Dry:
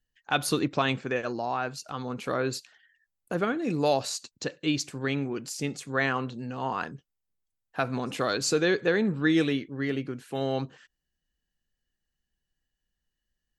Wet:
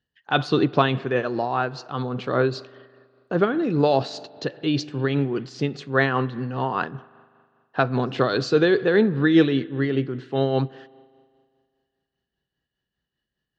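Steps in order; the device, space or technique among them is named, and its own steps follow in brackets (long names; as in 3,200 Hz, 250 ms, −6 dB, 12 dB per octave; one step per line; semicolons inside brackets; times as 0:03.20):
combo amplifier with spring reverb and tremolo (spring reverb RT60 2 s, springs 40 ms, chirp 30 ms, DRR 18.5 dB; amplitude tremolo 5 Hz, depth 45%; loudspeaker in its box 87–4,300 Hz, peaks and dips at 130 Hz +5 dB, 390 Hz +4 dB, 2,300 Hz −7 dB)
level +7.5 dB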